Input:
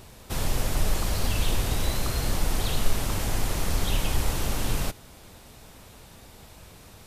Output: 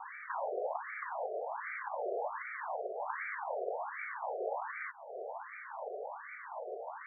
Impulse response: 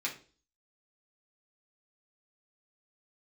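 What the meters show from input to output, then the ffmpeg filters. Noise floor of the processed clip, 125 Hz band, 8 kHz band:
-49 dBFS, under -40 dB, under -40 dB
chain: -af "equalizer=f=1.3k:w=3.6:g=-8,acompressor=threshold=-41dB:ratio=2.5,adynamicequalizer=threshold=0.00178:dfrequency=180:dqfactor=1:tfrequency=180:tqfactor=1:attack=5:release=100:ratio=0.375:range=2:mode=cutabove:tftype=bell,afftfilt=real='re*between(b*sr/1024,520*pow(1700/520,0.5+0.5*sin(2*PI*1.3*pts/sr))/1.41,520*pow(1700/520,0.5+0.5*sin(2*PI*1.3*pts/sr))*1.41)':imag='im*between(b*sr/1024,520*pow(1700/520,0.5+0.5*sin(2*PI*1.3*pts/sr))/1.41,520*pow(1700/520,0.5+0.5*sin(2*PI*1.3*pts/sr))*1.41)':win_size=1024:overlap=0.75,volume=17dB"

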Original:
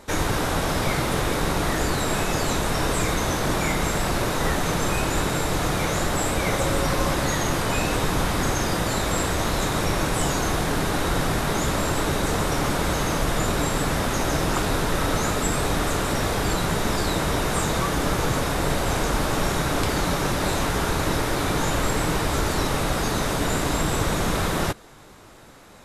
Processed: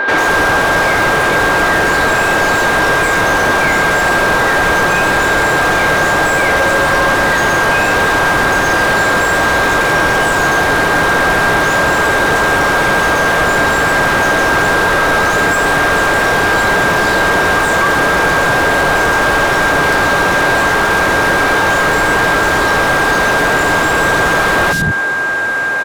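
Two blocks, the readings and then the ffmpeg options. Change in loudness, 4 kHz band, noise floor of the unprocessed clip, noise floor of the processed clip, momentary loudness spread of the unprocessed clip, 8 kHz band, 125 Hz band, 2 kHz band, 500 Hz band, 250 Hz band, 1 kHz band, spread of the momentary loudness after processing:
+12.5 dB, +9.0 dB, -26 dBFS, -13 dBFS, 1 LU, +5.5 dB, +3.0 dB, +20.0 dB, +11.5 dB, +6.5 dB, +14.0 dB, 0 LU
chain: -filter_complex "[0:a]acrossover=split=220|4100[a][b][c];[c]adelay=90[d];[a]adelay=190[e];[e][b][d]amix=inputs=3:normalize=0,asplit=2[f][g];[g]highpass=f=720:p=1,volume=34dB,asoftclip=type=tanh:threshold=-9.5dB[h];[f][h]amix=inputs=2:normalize=0,lowpass=f=1.7k:p=1,volume=-6dB,aeval=exprs='val(0)+0.126*sin(2*PI*1600*n/s)':c=same,volume=4.5dB"

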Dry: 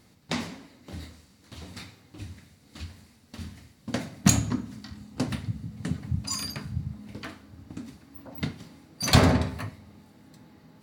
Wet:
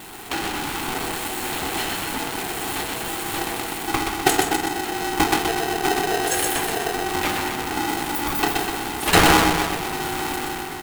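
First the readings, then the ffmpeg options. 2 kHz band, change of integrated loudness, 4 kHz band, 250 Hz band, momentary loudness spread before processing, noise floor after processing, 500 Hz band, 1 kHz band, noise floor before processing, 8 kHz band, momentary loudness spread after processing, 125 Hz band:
+14.5 dB, +6.0 dB, +10.0 dB, +5.0 dB, 22 LU, -30 dBFS, +11.5 dB, +16.0 dB, -59 dBFS, +8.0 dB, 8 LU, -3.5 dB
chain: -af "aeval=exprs='val(0)+0.5*0.0266*sgn(val(0))':c=same,highpass=200,dynaudnorm=f=110:g=9:m=9.5dB,asuperstop=centerf=5300:order=20:qfactor=1.6,aecho=1:1:125|250|375|500|625|750|875|1000:0.668|0.368|0.202|0.111|0.0612|0.0336|0.0185|0.0102,aeval=exprs='val(0)*sgn(sin(2*PI*570*n/s))':c=same"

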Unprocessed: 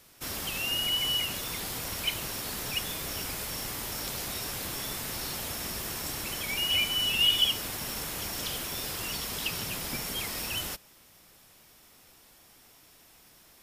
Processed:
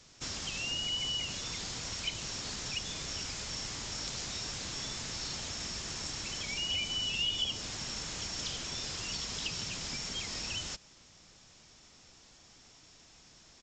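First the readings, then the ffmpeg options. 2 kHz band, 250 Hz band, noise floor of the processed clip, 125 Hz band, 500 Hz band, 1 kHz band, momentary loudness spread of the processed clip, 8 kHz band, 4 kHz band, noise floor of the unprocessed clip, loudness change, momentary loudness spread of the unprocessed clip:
-6.0 dB, -5.0 dB, -59 dBFS, -3.0 dB, -7.0 dB, -6.5 dB, 6 LU, -3.0 dB, -5.5 dB, -58 dBFS, -5.5 dB, 9 LU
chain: -filter_complex "[0:a]bass=f=250:g=5,treble=f=4k:g=8,acrossover=split=1100|2200[a][b][c];[a]acompressor=threshold=-41dB:ratio=4[d];[b]acompressor=threshold=-48dB:ratio=4[e];[c]acompressor=threshold=-29dB:ratio=4[f];[d][e][f]amix=inputs=3:normalize=0,aresample=16000,aresample=44100,volume=-2.5dB"

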